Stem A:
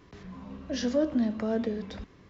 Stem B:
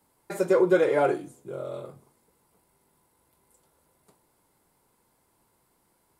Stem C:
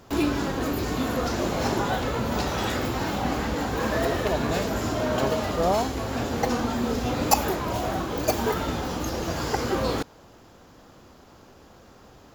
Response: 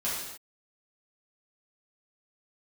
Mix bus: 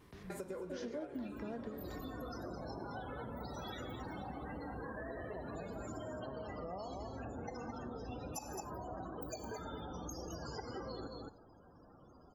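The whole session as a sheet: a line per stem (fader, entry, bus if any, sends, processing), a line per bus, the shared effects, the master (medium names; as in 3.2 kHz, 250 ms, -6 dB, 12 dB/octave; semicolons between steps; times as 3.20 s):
+1.0 dB, 0.00 s, no bus, no send, no echo send, vibrato 5.3 Hz 79 cents; upward expansion 1.5:1, over -35 dBFS
-6.5 dB, 0.00 s, bus A, send -22.5 dB, echo send -11.5 dB, none
-10.5 dB, 1.05 s, bus A, send -17 dB, echo send -8.5 dB, treble shelf 2 kHz +9 dB; loudest bins only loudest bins 32
bus A: 0.0 dB, compression 2.5:1, threshold -35 dBFS, peak gain reduction 9.5 dB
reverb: on, pre-delay 3 ms
echo: delay 214 ms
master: compression 5:1, threshold -42 dBFS, peak gain reduction 19.5 dB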